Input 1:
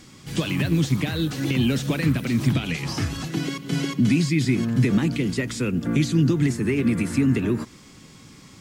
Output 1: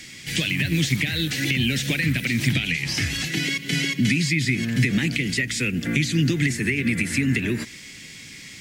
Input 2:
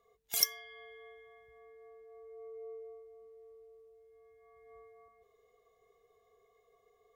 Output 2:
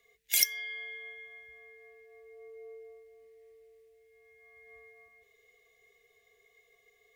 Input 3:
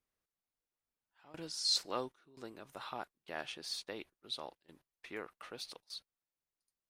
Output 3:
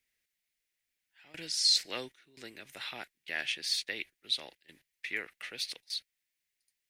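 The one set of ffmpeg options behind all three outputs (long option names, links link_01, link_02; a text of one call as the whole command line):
ffmpeg -i in.wav -filter_complex "[0:a]highshelf=frequency=1500:width_type=q:width=3:gain=9.5,acrossover=split=240[link_01][link_02];[link_02]acompressor=threshold=-21dB:ratio=5[link_03];[link_01][link_03]amix=inputs=2:normalize=0,volume=-1dB" out.wav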